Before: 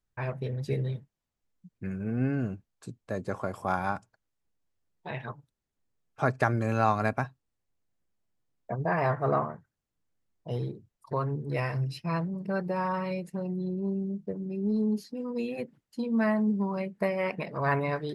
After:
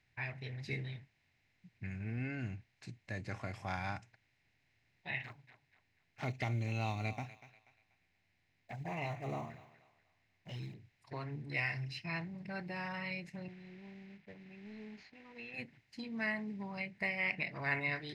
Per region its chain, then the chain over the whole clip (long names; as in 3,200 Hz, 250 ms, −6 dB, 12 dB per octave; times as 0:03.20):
0:05.23–0:10.74: one scale factor per block 7 bits + flanger swept by the level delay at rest 12 ms, full sweep at −25 dBFS + feedback echo with a high-pass in the loop 242 ms, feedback 22%, high-pass 720 Hz, level −16 dB
0:13.48–0:15.54: variable-slope delta modulation 64 kbit/s + low-pass filter 2,100 Hz + parametric band 150 Hz −14 dB 2.7 octaves
whole clip: compressor on every frequency bin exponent 0.6; noise reduction from a noise print of the clip's start 7 dB; drawn EQ curve 120 Hz 0 dB, 210 Hz −12 dB, 320 Hz −7 dB, 530 Hz −15 dB, 750 Hz −7 dB, 1,200 Hz −14 dB, 2,100 Hz +8 dB, 3,100 Hz +4 dB, 5,900 Hz −1 dB, 10,000 Hz −13 dB; level −5.5 dB